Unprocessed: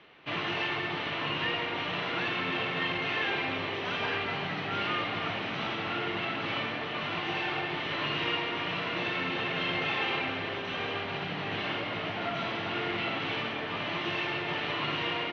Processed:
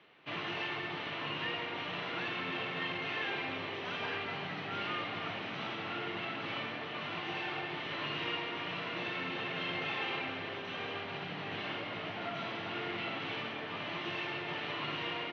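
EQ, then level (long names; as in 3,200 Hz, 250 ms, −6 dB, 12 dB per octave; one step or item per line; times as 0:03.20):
high-pass filter 85 Hz
−6.0 dB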